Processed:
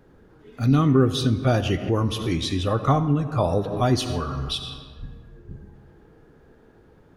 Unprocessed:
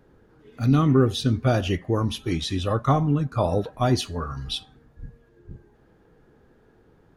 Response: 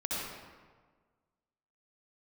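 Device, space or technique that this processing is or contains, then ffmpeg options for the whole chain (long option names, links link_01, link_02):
ducked reverb: -filter_complex "[0:a]asplit=3[link_01][link_02][link_03];[1:a]atrim=start_sample=2205[link_04];[link_02][link_04]afir=irnorm=-1:irlink=0[link_05];[link_03]apad=whole_len=315886[link_06];[link_05][link_06]sidechaincompress=threshold=-33dB:ratio=4:attack=28:release=166,volume=-7.5dB[link_07];[link_01][link_07]amix=inputs=2:normalize=0"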